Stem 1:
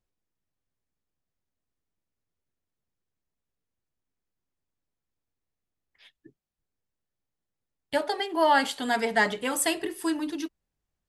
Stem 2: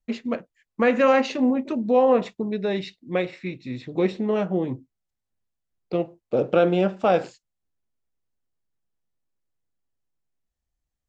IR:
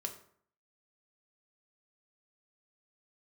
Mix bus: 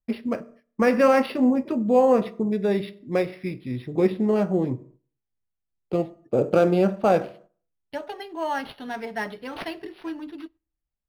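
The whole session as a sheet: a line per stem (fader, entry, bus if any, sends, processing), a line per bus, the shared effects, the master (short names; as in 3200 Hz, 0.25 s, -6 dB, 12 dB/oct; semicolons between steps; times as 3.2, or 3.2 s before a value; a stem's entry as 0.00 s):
-7.0 dB, 0.00 s, send -20 dB, dry
-3.5 dB, 0.00 s, send -4 dB, LPF 5400 Hz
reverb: on, RT60 0.60 s, pre-delay 3 ms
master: low shelf 180 Hz +5.5 dB; gate -50 dBFS, range -9 dB; decimation joined by straight lines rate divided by 6×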